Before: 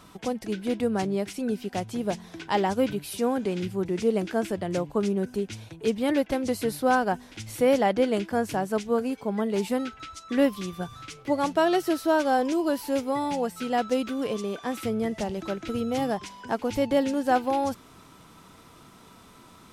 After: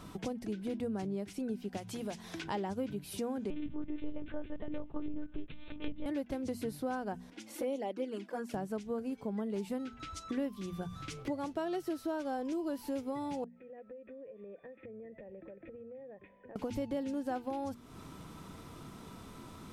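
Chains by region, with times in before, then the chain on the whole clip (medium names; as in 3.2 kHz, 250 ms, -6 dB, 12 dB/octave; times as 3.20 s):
1.77–2.44 s: tilt shelf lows -6 dB, about 680 Hz + compression 1.5:1, threshold -36 dBFS
3.50–6.06 s: monotone LPC vocoder at 8 kHz 300 Hz + distance through air 69 m + tape noise reduction on one side only encoder only
7.30–8.54 s: high-pass 260 Hz 24 dB/octave + touch-sensitive flanger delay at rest 4.5 ms, full sweep at -17.5 dBFS + tape noise reduction on one side only decoder only
13.44–16.56 s: cascade formant filter e + compression 16:1, threshold -47 dBFS
whole clip: bass shelf 440 Hz +9 dB; hum notches 60/120/180/240 Hz; compression 3:1, threshold -36 dBFS; trim -2.5 dB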